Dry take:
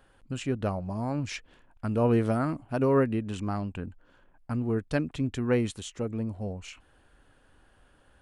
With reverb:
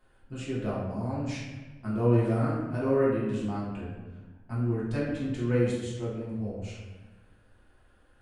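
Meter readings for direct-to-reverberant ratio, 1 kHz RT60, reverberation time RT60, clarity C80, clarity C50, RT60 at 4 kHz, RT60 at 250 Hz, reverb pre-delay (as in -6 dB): -8.5 dB, 1.0 s, 1.2 s, 3.0 dB, 0.5 dB, 0.80 s, 1.5 s, 3 ms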